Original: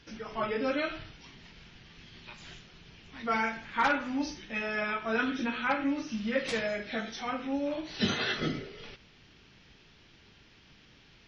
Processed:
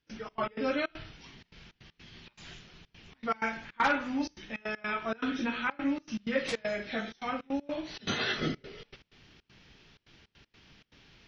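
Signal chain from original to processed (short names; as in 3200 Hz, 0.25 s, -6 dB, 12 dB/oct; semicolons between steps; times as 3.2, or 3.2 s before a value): step gate ".xx.x.xxx.xxxxx" 158 bpm -24 dB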